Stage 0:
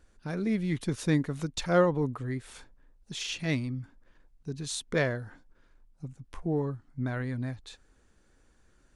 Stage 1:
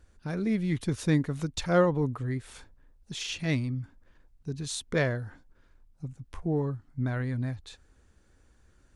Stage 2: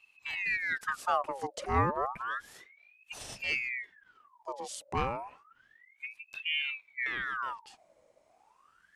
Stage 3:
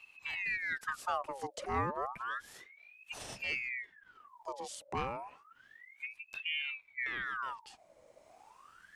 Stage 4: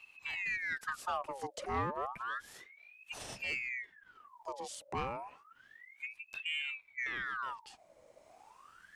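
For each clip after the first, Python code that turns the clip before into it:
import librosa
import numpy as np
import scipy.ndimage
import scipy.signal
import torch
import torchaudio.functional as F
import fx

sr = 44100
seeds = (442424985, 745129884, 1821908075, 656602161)

y1 = fx.peak_eq(x, sr, hz=77.0, db=8.0, octaves=1.2)
y2 = fx.dynamic_eq(y1, sr, hz=3600.0, q=1.1, threshold_db=-49.0, ratio=4.0, max_db=-6)
y2 = fx.ring_lfo(y2, sr, carrier_hz=1600.0, swing_pct=65, hz=0.31)
y2 = y2 * 10.0 ** (-2.0 / 20.0)
y3 = fx.band_squash(y2, sr, depth_pct=40)
y3 = y3 * 10.0 ** (-3.5 / 20.0)
y4 = 10.0 ** (-25.5 / 20.0) * np.tanh(y3 / 10.0 ** (-25.5 / 20.0))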